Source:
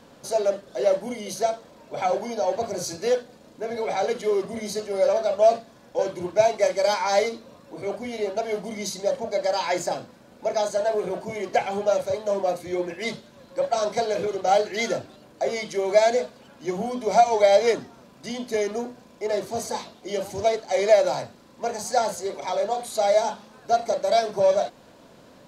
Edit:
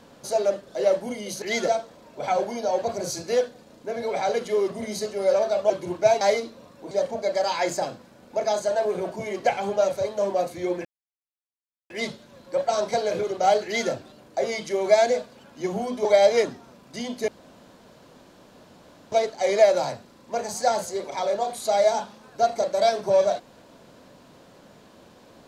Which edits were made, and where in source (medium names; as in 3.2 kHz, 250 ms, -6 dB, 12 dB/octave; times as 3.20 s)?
5.44–6.04 s: delete
6.55–7.10 s: delete
7.80–9.00 s: delete
12.94 s: insert silence 1.05 s
14.69–14.95 s: copy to 1.42 s
17.09–17.35 s: delete
18.58–20.42 s: room tone